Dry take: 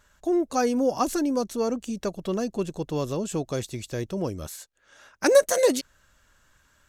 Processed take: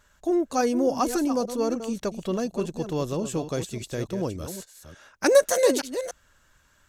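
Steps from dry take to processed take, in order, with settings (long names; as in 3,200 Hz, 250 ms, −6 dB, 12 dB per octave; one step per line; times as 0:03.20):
delay that plays each chunk backwards 291 ms, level −10 dB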